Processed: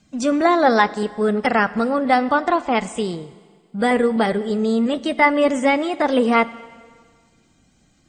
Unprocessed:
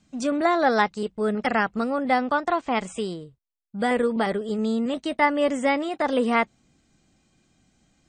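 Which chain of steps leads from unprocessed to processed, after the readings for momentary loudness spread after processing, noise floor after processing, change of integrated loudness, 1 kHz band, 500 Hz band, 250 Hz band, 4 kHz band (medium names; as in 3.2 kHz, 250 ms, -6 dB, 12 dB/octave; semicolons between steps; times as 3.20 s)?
7 LU, -59 dBFS, +5.5 dB, +5.0 dB, +5.5 dB, +5.5 dB, +5.0 dB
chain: coarse spectral quantiser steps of 15 dB; Schroeder reverb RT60 1.7 s, combs from 31 ms, DRR 16.5 dB; trim +5.5 dB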